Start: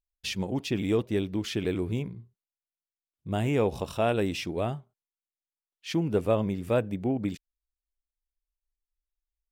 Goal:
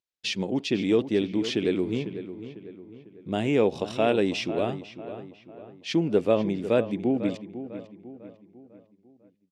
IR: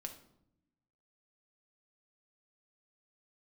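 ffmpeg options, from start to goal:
-filter_complex "[0:a]highpass=230,lowpass=5000,equalizer=frequency=1100:width_type=o:width=2:gain=-7.5,asplit=2[link_01][link_02];[link_02]adelay=499,lowpass=frequency=2700:poles=1,volume=-12dB,asplit=2[link_03][link_04];[link_04]adelay=499,lowpass=frequency=2700:poles=1,volume=0.46,asplit=2[link_05][link_06];[link_06]adelay=499,lowpass=frequency=2700:poles=1,volume=0.46,asplit=2[link_07][link_08];[link_08]adelay=499,lowpass=frequency=2700:poles=1,volume=0.46,asplit=2[link_09][link_10];[link_10]adelay=499,lowpass=frequency=2700:poles=1,volume=0.46[link_11];[link_01][link_03][link_05][link_07][link_09][link_11]amix=inputs=6:normalize=0,volume=7dB"

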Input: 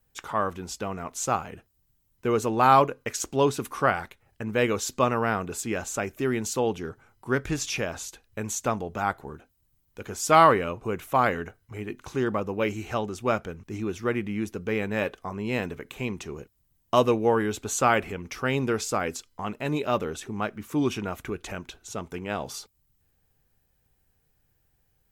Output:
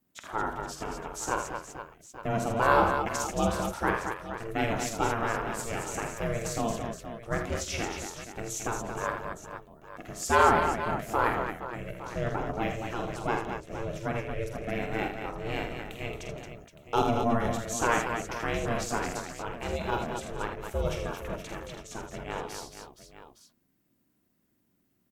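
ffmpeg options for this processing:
ffmpeg -i in.wav -filter_complex "[0:a]aeval=exprs='val(0)*sin(2*PI*230*n/s)':channel_layout=same,asplit=2[link_01][link_02];[link_02]aecho=0:1:47|80|165|224|471|864:0.447|0.422|0.119|0.473|0.282|0.2[link_03];[link_01][link_03]amix=inputs=2:normalize=0,volume=-3dB" out.wav

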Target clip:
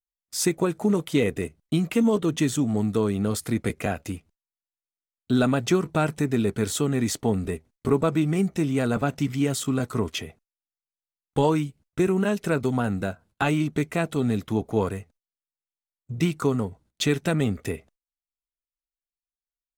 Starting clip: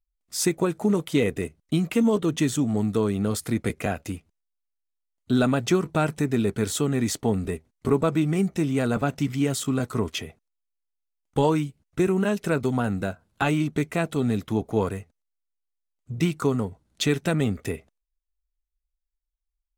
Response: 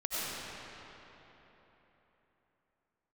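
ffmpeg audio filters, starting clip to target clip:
-af "agate=range=-21dB:threshold=-54dB:ratio=16:detection=peak"

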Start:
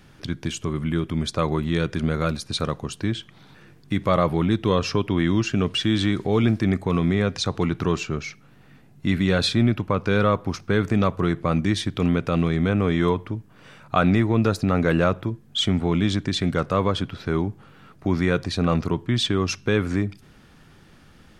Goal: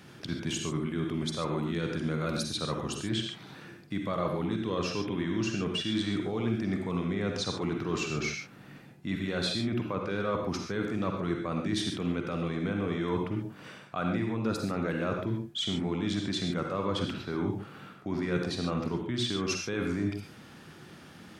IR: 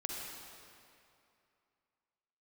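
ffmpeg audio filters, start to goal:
-filter_complex "[0:a]highpass=120,areverse,acompressor=threshold=-31dB:ratio=6,areverse[link_01];[1:a]atrim=start_sample=2205,atrim=end_sample=6615[link_02];[link_01][link_02]afir=irnorm=-1:irlink=0,volume=3.5dB"

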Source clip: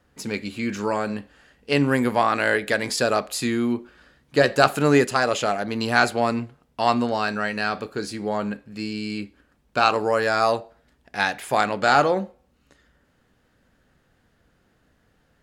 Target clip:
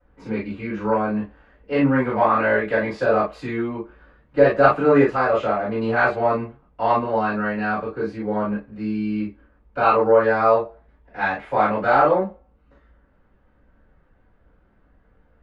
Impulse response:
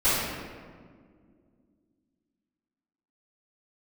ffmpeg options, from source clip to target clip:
-filter_complex "[0:a]lowpass=1700[link_01];[1:a]atrim=start_sample=2205,atrim=end_sample=3087[link_02];[link_01][link_02]afir=irnorm=-1:irlink=0,volume=-10dB"

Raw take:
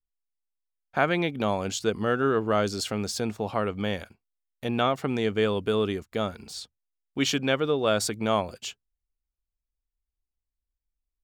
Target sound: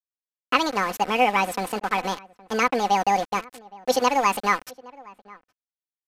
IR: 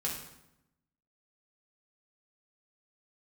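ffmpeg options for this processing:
-filter_complex "[0:a]aresample=16000,aeval=exprs='val(0)*gte(abs(val(0)),0.0237)':channel_layout=same,aresample=44100,aecho=1:1:7.3:0.56,asetrate=81585,aresample=44100,bass=frequency=250:gain=-2,treble=frequency=4000:gain=-8,asplit=2[link_01][link_02];[link_02]adelay=816.3,volume=-22dB,highshelf=frequency=4000:gain=-18.4[link_03];[link_01][link_03]amix=inputs=2:normalize=0,volume=3dB"

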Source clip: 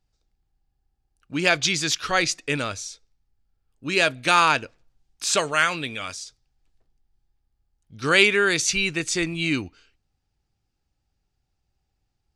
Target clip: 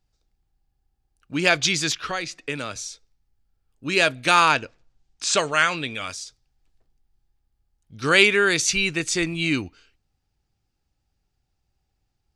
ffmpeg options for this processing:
ffmpeg -i in.wav -filter_complex "[0:a]asettb=1/sr,asplit=3[link_01][link_02][link_03];[link_01]atrim=end=1.924[link_04];[link_02]atrim=start=1.92:end=2.76,asetpts=PTS-STARTPTS,afade=type=in:duration=0.004:curve=qsin,afade=type=out:start_time=0.836:duration=0.004:curve=qsin,acrossover=split=120|3700[link_05][link_06][link_07];[link_05]acompressor=threshold=-52dB:ratio=4[link_08];[link_06]acompressor=threshold=-27dB:ratio=4[link_09];[link_07]acompressor=threshold=-41dB:ratio=4[link_10];[link_08][link_09][link_10]amix=inputs=3:normalize=0[link_11];[link_03]atrim=start=2.756[link_12];[link_04][link_11]acrossfade=duration=0.004:curve1=hsin:curve2=qsin[link_13];[link_13][link_12]acrossfade=duration=0.004:curve1=qsin:curve2=hsin,asplit=3[link_14][link_15][link_16];[link_14]afade=type=out:start_time=4.54:duration=0.02[link_17];[link_15]lowpass=frequency=8400:width=0.5412,lowpass=frequency=8400:width=1.3066,afade=type=in:start_time=4.54:duration=0.02,afade=type=out:start_time=5.93:duration=0.02[link_18];[link_16]afade=type=in:start_time=5.93:duration=0.02[link_19];[link_17][link_18][link_19]amix=inputs=3:normalize=0,volume=1dB" out.wav

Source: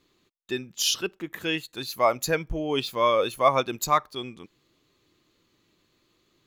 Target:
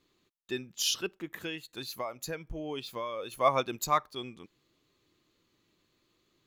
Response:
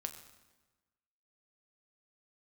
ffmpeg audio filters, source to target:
-filter_complex "[0:a]asettb=1/sr,asplit=3[link_01][link_02][link_03];[link_01]atrim=end=1.384[link_04];[link_02]atrim=start=1.38:end=3.32,asetpts=PTS-STARTPTS,afade=type=in:duration=0.004:curve=qsin,afade=type=out:start_time=1.936:duration=0.004:curve=qsin,acompressor=threshold=-29dB:ratio=6[link_05];[link_03]atrim=start=3.316[link_06];[link_04][link_05]acrossfade=duration=0.004:curve1=hsin:curve2=qsin[link_07];[link_07][link_06]acrossfade=duration=0.004:curve1=qsin:curve2=hsin,volume=-5dB"

